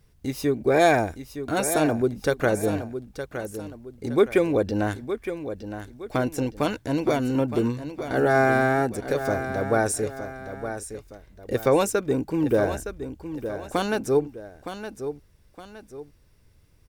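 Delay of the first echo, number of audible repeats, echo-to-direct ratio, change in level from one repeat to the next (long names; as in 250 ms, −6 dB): 915 ms, 2, −9.5 dB, −8.5 dB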